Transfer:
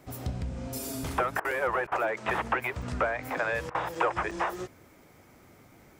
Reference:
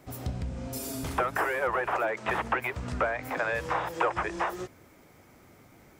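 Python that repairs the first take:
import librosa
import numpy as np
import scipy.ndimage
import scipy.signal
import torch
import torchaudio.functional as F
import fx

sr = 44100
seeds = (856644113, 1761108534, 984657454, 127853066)

y = fx.fix_interpolate(x, sr, at_s=(1.51, 2.82, 3.95, 4.31), length_ms=4.0)
y = fx.fix_interpolate(y, sr, at_s=(1.4, 1.87, 3.7), length_ms=46.0)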